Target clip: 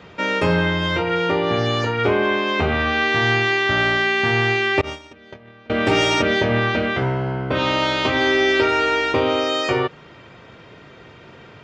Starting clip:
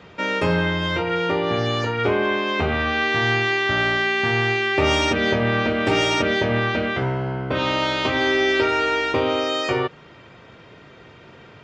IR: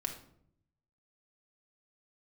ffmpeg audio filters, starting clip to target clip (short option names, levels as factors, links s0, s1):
-filter_complex "[0:a]asettb=1/sr,asplit=3[s0][s1][s2];[s0]atrim=end=4.814[s3];[s1]atrim=start=4.81:end=5.7,asetpts=PTS-STARTPTS,afade=t=in:d=0.004:c=qsin,afade=t=out:st=0.886:d=0.004:c=qsin,agate=range=0.0398:threshold=0.178:ratio=16:detection=peak[s4];[s2]atrim=start=5.696[s5];[s3][s4]acrossfade=d=0.004:c1=hsin:c2=qsin[s6];[s6][s5]acrossfade=d=0.004:c1=qsin:c2=hsin,volume=1.26"